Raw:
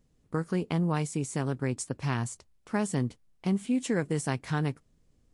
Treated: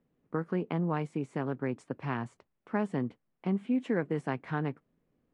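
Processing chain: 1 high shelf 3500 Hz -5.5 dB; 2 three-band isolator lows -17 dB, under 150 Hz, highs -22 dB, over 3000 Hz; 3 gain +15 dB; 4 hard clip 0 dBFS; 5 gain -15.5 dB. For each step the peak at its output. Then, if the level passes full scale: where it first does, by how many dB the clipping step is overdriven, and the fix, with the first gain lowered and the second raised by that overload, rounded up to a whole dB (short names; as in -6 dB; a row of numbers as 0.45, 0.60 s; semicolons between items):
-15.5, -17.0, -2.0, -2.0, -17.5 dBFS; no overload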